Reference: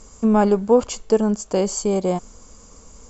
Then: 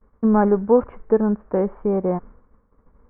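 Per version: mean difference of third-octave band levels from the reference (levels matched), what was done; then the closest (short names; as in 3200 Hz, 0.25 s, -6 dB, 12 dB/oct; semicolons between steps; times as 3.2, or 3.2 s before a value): 6.0 dB: steep low-pass 1900 Hz 48 dB/oct; bell 670 Hz -4 dB 0.32 oct; expander -36 dBFS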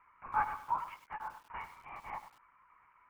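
11.5 dB: elliptic band-pass 900–2300 Hz, stop band 40 dB; LPC vocoder at 8 kHz whisper; lo-fi delay 99 ms, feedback 35%, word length 8-bit, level -11 dB; gain -5 dB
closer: first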